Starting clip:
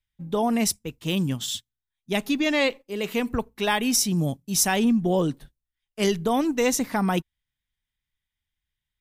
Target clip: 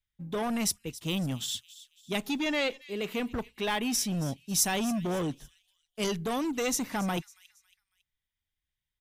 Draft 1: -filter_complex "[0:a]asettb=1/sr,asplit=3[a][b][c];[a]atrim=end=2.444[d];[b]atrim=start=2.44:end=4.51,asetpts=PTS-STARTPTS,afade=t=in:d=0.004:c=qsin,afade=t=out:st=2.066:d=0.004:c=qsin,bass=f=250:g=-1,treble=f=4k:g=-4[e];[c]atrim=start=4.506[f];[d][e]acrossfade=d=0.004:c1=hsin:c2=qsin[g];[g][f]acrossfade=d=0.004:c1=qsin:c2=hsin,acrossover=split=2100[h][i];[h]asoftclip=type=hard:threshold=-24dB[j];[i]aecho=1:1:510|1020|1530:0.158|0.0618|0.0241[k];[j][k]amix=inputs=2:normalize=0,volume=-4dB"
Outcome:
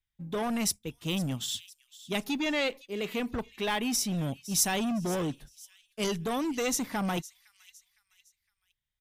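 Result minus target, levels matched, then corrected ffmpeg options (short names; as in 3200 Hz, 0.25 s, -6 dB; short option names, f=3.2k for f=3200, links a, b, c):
echo 0.234 s late
-filter_complex "[0:a]asettb=1/sr,asplit=3[a][b][c];[a]atrim=end=2.444[d];[b]atrim=start=2.44:end=4.51,asetpts=PTS-STARTPTS,afade=t=in:d=0.004:c=qsin,afade=t=out:st=2.066:d=0.004:c=qsin,bass=f=250:g=-1,treble=f=4k:g=-4[e];[c]atrim=start=4.506[f];[d][e]acrossfade=d=0.004:c1=hsin:c2=qsin[g];[g][f]acrossfade=d=0.004:c1=qsin:c2=hsin,acrossover=split=2100[h][i];[h]asoftclip=type=hard:threshold=-24dB[j];[i]aecho=1:1:276|552|828:0.158|0.0618|0.0241[k];[j][k]amix=inputs=2:normalize=0,volume=-4dB"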